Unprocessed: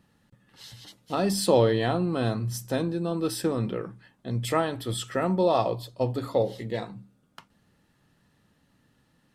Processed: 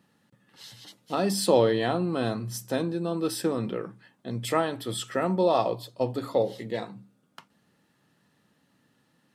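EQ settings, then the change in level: HPF 150 Hz 12 dB/oct; 0.0 dB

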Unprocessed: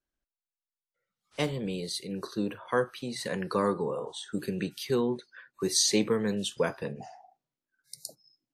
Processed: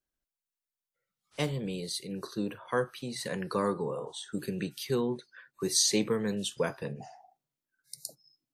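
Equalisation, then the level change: bell 140 Hz +4.5 dB 0.36 oct; high shelf 7000 Hz +5 dB; -2.5 dB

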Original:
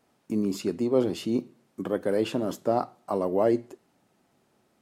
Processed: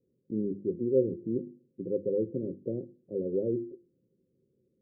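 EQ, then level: rippled Chebyshev low-pass 540 Hz, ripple 6 dB; notches 50/100/150/200/250/300/350 Hz; 0.0 dB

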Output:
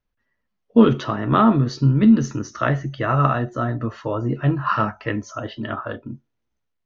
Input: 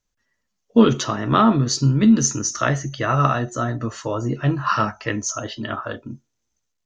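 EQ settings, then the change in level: air absorption 290 m; +1.0 dB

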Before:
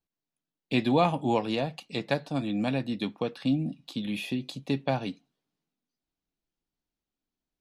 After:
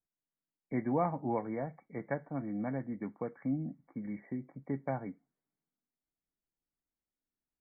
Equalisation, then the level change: brick-wall FIR low-pass 2300 Hz; -7.5 dB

